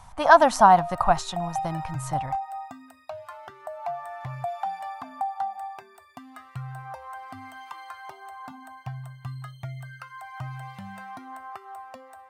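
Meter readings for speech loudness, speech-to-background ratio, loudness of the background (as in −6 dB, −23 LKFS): −18.5 LKFS, 18.0 dB, −36.5 LKFS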